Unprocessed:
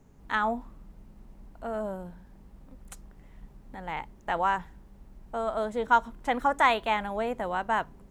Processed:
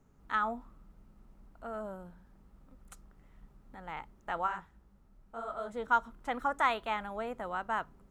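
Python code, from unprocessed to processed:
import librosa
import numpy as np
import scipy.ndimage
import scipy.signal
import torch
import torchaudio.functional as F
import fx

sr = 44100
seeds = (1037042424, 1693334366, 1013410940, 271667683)

y = fx.peak_eq(x, sr, hz=1300.0, db=9.0, octaves=0.28)
y = fx.detune_double(y, sr, cents=50, at=(4.46, 5.69), fade=0.02)
y = F.gain(torch.from_numpy(y), -8.0).numpy()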